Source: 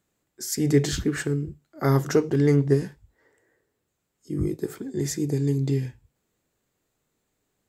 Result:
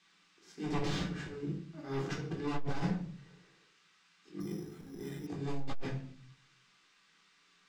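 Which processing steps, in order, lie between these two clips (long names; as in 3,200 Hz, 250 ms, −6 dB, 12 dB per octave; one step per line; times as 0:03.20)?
spectral envelope flattened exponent 0.6
low shelf with overshoot 130 Hz −9 dB, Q 3
brickwall limiter −12.5 dBFS, peak gain reduction 7 dB
volume swells 359 ms
wave folding −25.5 dBFS
noise in a band 1,100–9,400 Hz −60 dBFS
high-frequency loss of the air 150 metres
rectangular room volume 530 cubic metres, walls furnished, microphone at 3.7 metres
0:04.40–0:05.27: bad sample-rate conversion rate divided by 8×, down filtered, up hold
saturating transformer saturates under 39 Hz
level −7.5 dB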